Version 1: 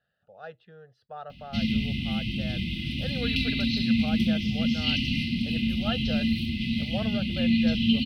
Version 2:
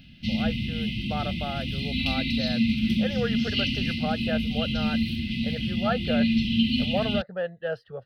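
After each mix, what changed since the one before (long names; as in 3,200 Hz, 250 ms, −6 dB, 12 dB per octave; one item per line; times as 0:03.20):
speech +7.5 dB
background: entry −1.30 s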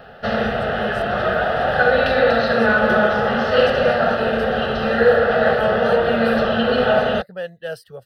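speech: remove high-frequency loss of the air 300 metres
background: remove linear-phase brick-wall band-stop 340–2,000 Hz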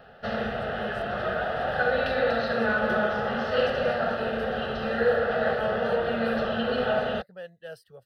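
speech −12.0 dB
background −9.0 dB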